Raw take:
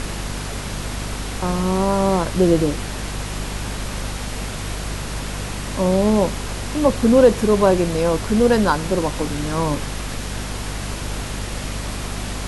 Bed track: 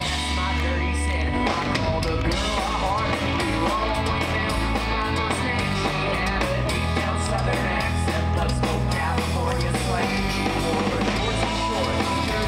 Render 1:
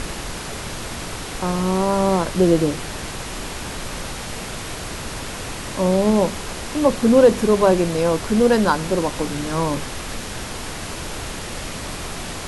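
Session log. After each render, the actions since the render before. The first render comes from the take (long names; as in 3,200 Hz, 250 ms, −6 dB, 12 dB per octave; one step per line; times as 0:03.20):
hum removal 50 Hz, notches 5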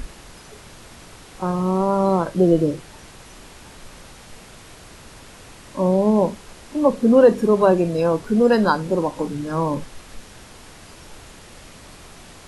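noise reduction from a noise print 13 dB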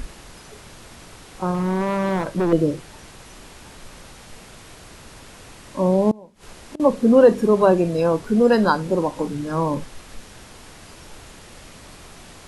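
0:01.54–0:02.53: hard clipping −17.5 dBFS
0:06.11–0:06.80: gate with flip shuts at −19 dBFS, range −25 dB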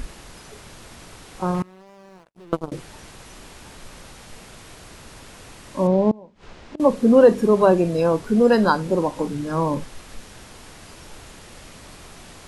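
0:01.62–0:02.72: power curve on the samples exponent 3
0:05.87–0:06.78: high-frequency loss of the air 130 metres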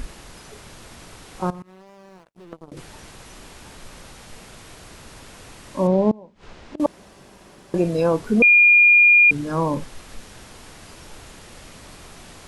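0:01.50–0:02.77: downward compressor, threshold −35 dBFS
0:06.86–0:07.74: fill with room tone
0:08.42–0:09.31: beep over 2,420 Hz −9 dBFS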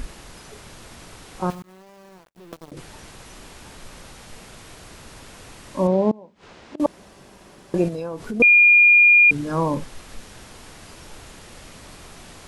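0:01.50–0:02.73: one scale factor per block 3 bits
0:05.87–0:06.81: high-pass filter 150 Hz 6 dB per octave
0:07.88–0:08.40: downward compressor 10 to 1, threshold −25 dBFS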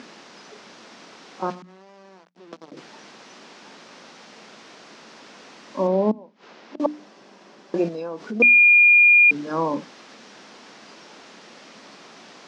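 Chebyshev band-pass filter 210–5,700 Hz, order 3
mains-hum notches 60/120/180/240/300 Hz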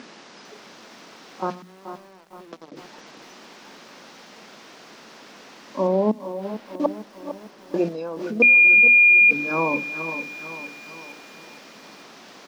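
single-tap delay 428 ms −15 dB
feedback echo at a low word length 453 ms, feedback 55%, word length 8 bits, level −11 dB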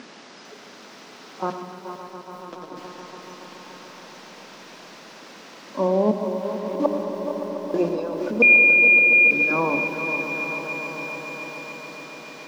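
echo that builds up and dies away 142 ms, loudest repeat 5, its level −14 dB
comb and all-pass reverb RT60 1 s, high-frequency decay 0.85×, pre-delay 65 ms, DRR 8 dB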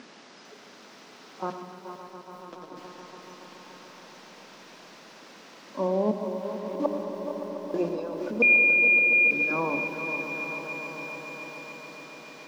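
level −5.5 dB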